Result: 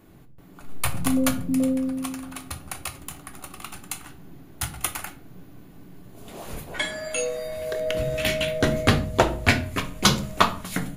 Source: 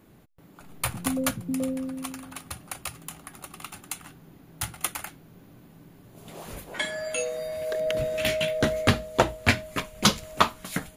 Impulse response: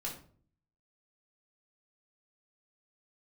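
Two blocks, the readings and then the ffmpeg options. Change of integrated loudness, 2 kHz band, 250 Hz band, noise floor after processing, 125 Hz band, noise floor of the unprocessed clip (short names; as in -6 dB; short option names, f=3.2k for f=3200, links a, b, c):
+2.5 dB, +2.5 dB, +5.0 dB, -48 dBFS, +4.5 dB, -54 dBFS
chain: -filter_complex "[0:a]asplit=2[a][b];[1:a]atrim=start_sample=2205,lowshelf=f=150:g=8.5[c];[b][c]afir=irnorm=-1:irlink=0,volume=-4dB[d];[a][d]amix=inputs=2:normalize=0,volume=-1dB"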